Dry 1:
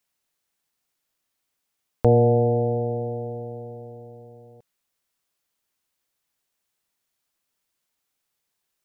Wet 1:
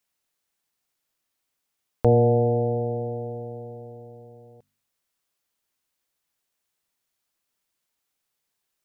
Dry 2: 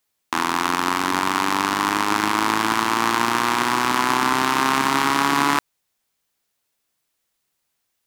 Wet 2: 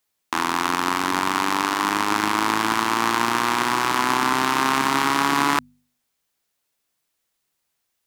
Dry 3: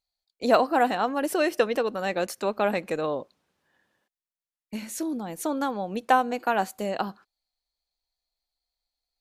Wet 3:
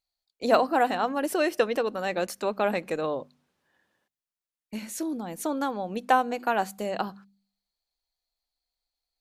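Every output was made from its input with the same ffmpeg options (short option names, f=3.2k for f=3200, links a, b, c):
-af "bandreject=f=49.39:t=h:w=4,bandreject=f=98.78:t=h:w=4,bandreject=f=148.17:t=h:w=4,bandreject=f=197.56:t=h:w=4,bandreject=f=246.95:t=h:w=4,volume=-1dB"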